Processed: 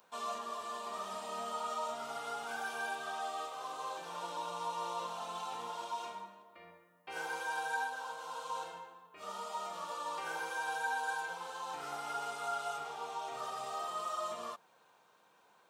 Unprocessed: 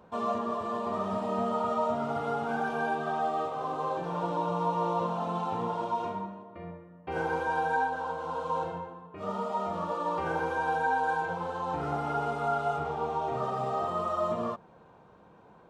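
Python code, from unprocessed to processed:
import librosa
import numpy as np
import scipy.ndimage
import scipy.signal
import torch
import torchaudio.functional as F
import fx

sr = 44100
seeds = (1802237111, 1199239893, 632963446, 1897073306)

y = np.diff(x, prepend=0.0)
y = F.gain(torch.from_numpy(y), 9.0).numpy()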